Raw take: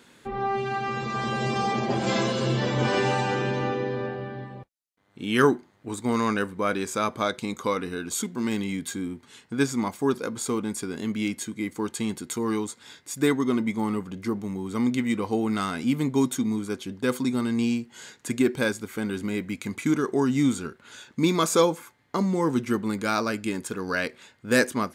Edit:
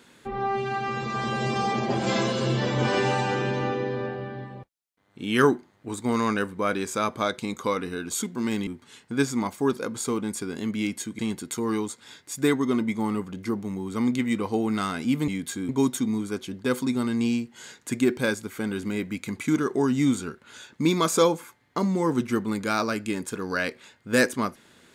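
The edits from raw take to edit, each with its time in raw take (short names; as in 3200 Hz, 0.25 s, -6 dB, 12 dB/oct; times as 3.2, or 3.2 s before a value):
8.67–9.08 move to 16.07
11.6–11.98 cut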